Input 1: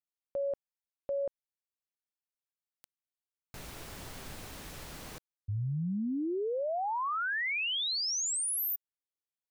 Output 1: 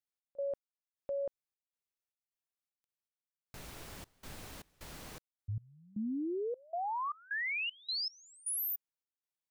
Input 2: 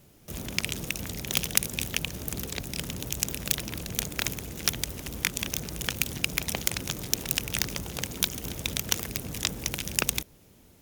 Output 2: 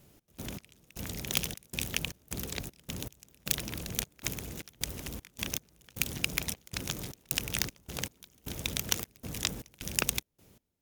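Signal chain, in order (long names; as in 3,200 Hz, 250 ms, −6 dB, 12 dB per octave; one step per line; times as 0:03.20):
gate pattern "x.x..xxx.xx.x" 78 BPM −24 dB
level −3 dB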